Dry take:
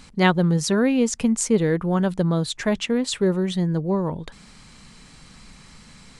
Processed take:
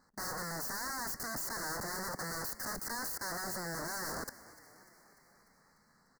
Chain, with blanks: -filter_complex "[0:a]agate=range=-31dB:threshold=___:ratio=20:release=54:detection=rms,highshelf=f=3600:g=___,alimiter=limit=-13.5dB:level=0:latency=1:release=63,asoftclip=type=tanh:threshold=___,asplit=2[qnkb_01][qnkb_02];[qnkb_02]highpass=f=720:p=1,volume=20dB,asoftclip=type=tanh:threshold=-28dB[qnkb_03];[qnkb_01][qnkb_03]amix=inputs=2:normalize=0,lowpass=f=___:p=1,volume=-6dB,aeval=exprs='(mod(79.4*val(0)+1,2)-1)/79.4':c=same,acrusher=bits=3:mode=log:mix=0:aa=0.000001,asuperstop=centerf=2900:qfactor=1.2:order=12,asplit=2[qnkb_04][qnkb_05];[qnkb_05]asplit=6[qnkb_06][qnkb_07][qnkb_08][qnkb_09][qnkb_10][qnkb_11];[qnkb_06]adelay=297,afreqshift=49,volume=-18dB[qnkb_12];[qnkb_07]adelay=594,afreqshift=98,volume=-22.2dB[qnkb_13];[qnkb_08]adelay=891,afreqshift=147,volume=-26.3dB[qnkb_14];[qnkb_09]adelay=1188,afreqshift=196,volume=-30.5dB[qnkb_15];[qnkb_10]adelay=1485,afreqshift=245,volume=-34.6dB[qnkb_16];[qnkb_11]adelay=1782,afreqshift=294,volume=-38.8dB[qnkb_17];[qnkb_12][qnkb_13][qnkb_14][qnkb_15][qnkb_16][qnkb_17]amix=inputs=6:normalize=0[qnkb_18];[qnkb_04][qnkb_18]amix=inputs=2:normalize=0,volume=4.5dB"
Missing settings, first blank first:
-34dB, -9, -28dB, 3700